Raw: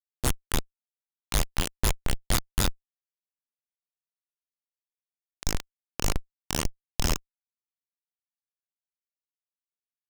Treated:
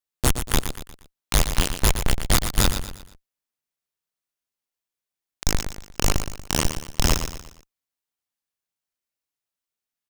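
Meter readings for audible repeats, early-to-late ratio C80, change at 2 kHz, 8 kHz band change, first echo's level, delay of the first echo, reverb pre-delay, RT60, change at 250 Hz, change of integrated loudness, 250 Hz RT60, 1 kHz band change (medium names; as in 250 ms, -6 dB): 4, no reverb, +6.5 dB, +6.5 dB, -9.0 dB, 118 ms, no reverb, no reverb, +6.5 dB, +6.0 dB, no reverb, +6.5 dB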